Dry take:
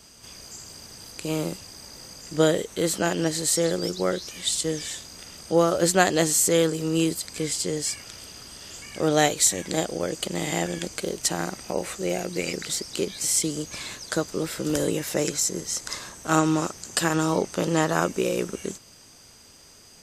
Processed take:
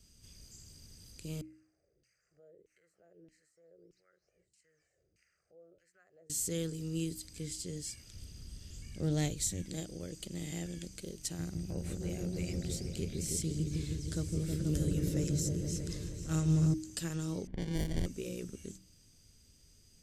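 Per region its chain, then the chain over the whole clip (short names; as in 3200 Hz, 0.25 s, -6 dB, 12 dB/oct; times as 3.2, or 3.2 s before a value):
1.41–6.3 fixed phaser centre 950 Hz, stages 6 + compressor 3:1, threshold -39 dBFS + LFO band-pass saw down 1.6 Hz 280–2800 Hz
8.14–9.64 low shelf 250 Hz +9.5 dB + Doppler distortion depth 0.1 ms
11.39–16.74 bell 84 Hz +11.5 dB 1.5 oct + repeats that get brighter 0.159 s, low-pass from 400 Hz, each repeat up 1 oct, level 0 dB
17.47–18.06 LPF 11000 Hz + sample-rate reducer 1300 Hz + low-pass opened by the level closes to 1800 Hz, open at -16 dBFS
whole clip: passive tone stack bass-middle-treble 10-0-1; de-hum 62.66 Hz, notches 5; gain +6.5 dB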